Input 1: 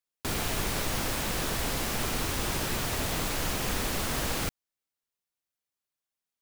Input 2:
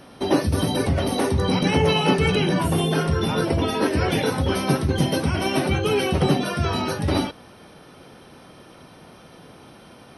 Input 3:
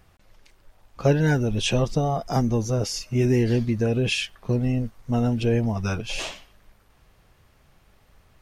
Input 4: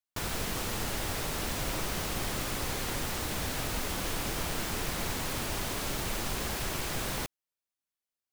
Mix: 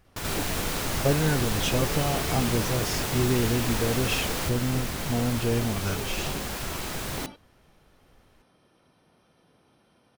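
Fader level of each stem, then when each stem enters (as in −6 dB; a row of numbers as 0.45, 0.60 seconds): −1.0, −17.5, −4.5, +0.5 decibels; 0.00, 0.05, 0.00, 0.00 seconds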